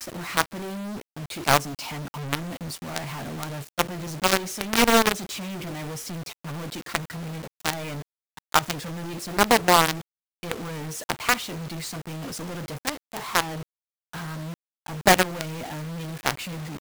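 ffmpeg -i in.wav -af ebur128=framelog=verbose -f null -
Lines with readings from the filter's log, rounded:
Integrated loudness:
  I:         -26.2 LUFS
  Threshold: -36.5 LUFS
Loudness range:
  LRA:         6.1 LU
  Threshold: -46.5 LUFS
  LRA low:   -30.4 LUFS
  LRA high:  -24.2 LUFS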